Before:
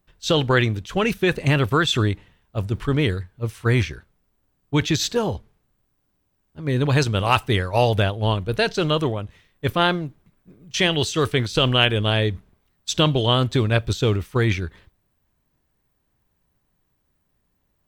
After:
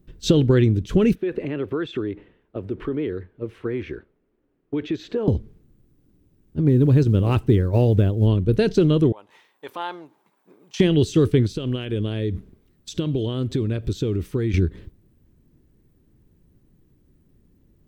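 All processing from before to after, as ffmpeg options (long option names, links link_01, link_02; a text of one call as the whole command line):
ffmpeg -i in.wav -filter_complex "[0:a]asettb=1/sr,asplit=3[link_01][link_02][link_03];[link_01]atrim=end=1.154[link_04];[link_02]atrim=start=1.15:end=5.28,asetpts=PTS-STARTPTS,afade=type=in:duration=0.004:curve=qsin,afade=type=out:start_time=4.126:duration=0.004:curve=qsin,acompressor=threshold=-27dB:ratio=6:attack=3.2:release=140:knee=1:detection=peak,acrossover=split=330 3000:gain=0.112 1 0.0708[link_05][link_06][link_07];[link_05][link_06][link_07]amix=inputs=3:normalize=0[link_08];[link_03]atrim=start=5.276[link_09];[link_04][link_08]acrossfade=duration=0.004:curve1=hsin:curve2=qsin[link_10];[link_10][link_09]acrossfade=duration=0.004:curve1=qsin:curve2=hsin,asettb=1/sr,asplit=3[link_11][link_12][link_13];[link_11]atrim=end=6.684[link_14];[link_12]atrim=start=6.68:end=8.27,asetpts=PTS-STARTPTS,afade=type=in:duration=0.004:curve=qsin,afade=type=out:start_time=1.586:duration=0.004:curve=qsin,highshelf=frequency=2100:gain=-7,acrusher=bits=8:mode=log:mix=0:aa=0.000001[link_15];[link_13]atrim=start=8.266[link_16];[link_14][link_15]acrossfade=duration=0.004:curve1=hsin:curve2=qsin[link_17];[link_17][link_16]acrossfade=duration=0.004:curve1=qsin:curve2=hsin,asettb=1/sr,asplit=3[link_18][link_19][link_20];[link_18]atrim=end=9.124[link_21];[link_19]atrim=start=9.12:end=10.8,asetpts=PTS-STARTPTS,afade=type=in:duration=0.004:curve=qsin,afade=type=out:start_time=1.676:duration=0.004:curve=qsin,acompressor=threshold=-38dB:ratio=2.5:attack=3.2:release=140:knee=1:detection=peak,highpass=frequency=880:width_type=q:width=5.7[link_22];[link_20]atrim=start=10.796[link_23];[link_21][link_22]acrossfade=duration=0.004:curve1=hsin:curve2=qsin[link_24];[link_24][link_23]acrossfade=duration=0.004:curve1=qsin:curve2=hsin,asettb=1/sr,asplit=3[link_25][link_26][link_27];[link_25]atrim=end=11.524[link_28];[link_26]atrim=start=11.52:end=14.54,asetpts=PTS-STARTPTS,afade=type=in:duration=0.004:curve=qsin,afade=type=out:start_time=3.016:duration=0.004:curve=qsin,lowshelf=frequency=320:gain=-6,acompressor=threshold=-34dB:ratio=4:attack=3.2:release=140:knee=1:detection=peak[link_29];[link_27]atrim=start=14.536[link_30];[link_28][link_29]acrossfade=duration=0.004:curve1=hsin:curve2=qsin[link_31];[link_31][link_30]acrossfade=duration=0.004:curve1=qsin:curve2=hsin,lowshelf=frequency=530:width_type=q:width=1.5:gain=13.5,acompressor=threshold=-18dB:ratio=2.5" out.wav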